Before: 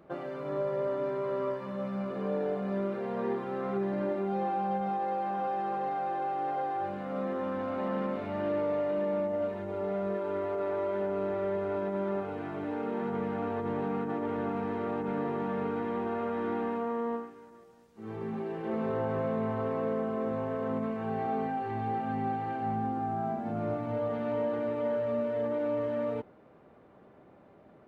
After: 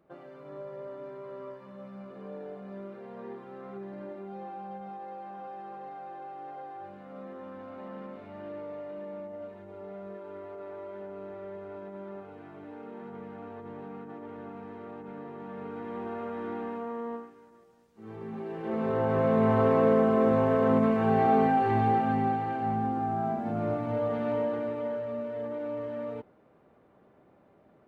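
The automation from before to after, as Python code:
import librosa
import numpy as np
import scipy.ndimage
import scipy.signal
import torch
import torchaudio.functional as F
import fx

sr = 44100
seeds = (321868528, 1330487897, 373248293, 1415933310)

y = fx.gain(x, sr, db=fx.line((15.34, -10.0), (16.05, -3.5), (18.26, -3.5), (19.54, 9.0), (21.76, 9.0), (22.49, 2.5), (24.3, 2.5), (25.09, -4.0)))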